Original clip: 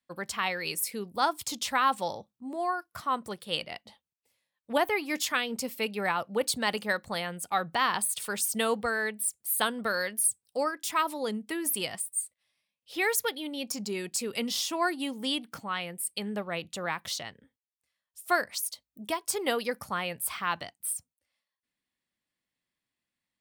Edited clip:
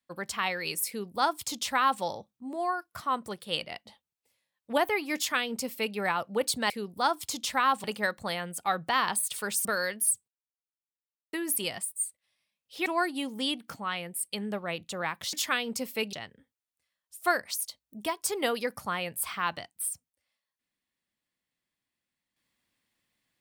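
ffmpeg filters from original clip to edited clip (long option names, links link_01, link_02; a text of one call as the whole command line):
ffmpeg -i in.wav -filter_complex "[0:a]asplit=9[link_01][link_02][link_03][link_04][link_05][link_06][link_07][link_08][link_09];[link_01]atrim=end=6.702[link_10];[link_02]atrim=start=0.878:end=2.022[link_11];[link_03]atrim=start=6.698:end=8.512[link_12];[link_04]atrim=start=9.818:end=10.45,asetpts=PTS-STARTPTS,afade=type=out:start_time=0.628:duration=0.004:curve=hsin[link_13];[link_05]atrim=start=10.45:end=11.5,asetpts=PTS-STARTPTS,volume=0[link_14];[link_06]atrim=start=11.5:end=13.032,asetpts=PTS-STARTPTS,afade=type=in:duration=0.004:curve=hsin[link_15];[link_07]atrim=start=14.698:end=17.172[link_16];[link_08]atrim=start=5.158:end=5.962[link_17];[link_09]atrim=start=17.168[link_18];[link_10][link_11]acrossfade=duration=0.004:curve1=hsin:curve2=hsin[link_19];[link_19][link_12]acrossfade=duration=0.004:curve1=hsin:curve2=hsin[link_20];[link_13][link_14][link_15]concat=n=3:v=0:a=1[link_21];[link_20][link_21]acrossfade=duration=0.004:curve1=hsin:curve2=hsin[link_22];[link_22][link_16]acrossfade=duration=0.004:curve1=hsin:curve2=hsin[link_23];[link_23][link_17]acrossfade=duration=0.004:curve1=hsin:curve2=hsin[link_24];[link_24][link_18]acrossfade=duration=0.004:curve1=hsin:curve2=hsin" out.wav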